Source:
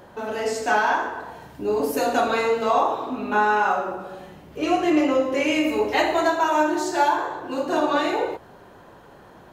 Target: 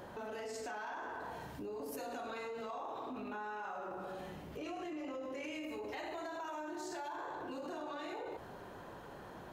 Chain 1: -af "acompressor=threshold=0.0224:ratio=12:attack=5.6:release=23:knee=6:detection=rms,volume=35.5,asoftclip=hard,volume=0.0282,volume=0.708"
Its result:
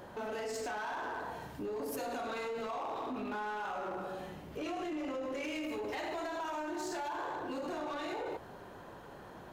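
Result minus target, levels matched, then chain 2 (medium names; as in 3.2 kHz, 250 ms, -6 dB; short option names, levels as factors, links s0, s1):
compression: peak gain reduction -5.5 dB
-af "acompressor=threshold=0.0112:ratio=12:attack=5.6:release=23:knee=6:detection=rms,volume=35.5,asoftclip=hard,volume=0.0282,volume=0.708"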